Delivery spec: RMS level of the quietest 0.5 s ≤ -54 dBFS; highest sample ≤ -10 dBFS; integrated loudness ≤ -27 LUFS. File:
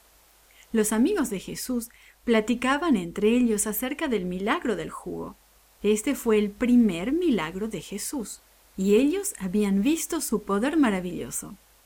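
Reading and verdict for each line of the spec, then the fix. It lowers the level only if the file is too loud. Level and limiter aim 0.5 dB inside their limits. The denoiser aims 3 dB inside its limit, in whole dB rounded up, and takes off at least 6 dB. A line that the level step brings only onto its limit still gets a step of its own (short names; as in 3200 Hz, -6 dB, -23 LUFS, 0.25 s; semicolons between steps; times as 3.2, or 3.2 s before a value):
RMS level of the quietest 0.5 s -58 dBFS: OK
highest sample -9.5 dBFS: fail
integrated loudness -25.5 LUFS: fail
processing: gain -2 dB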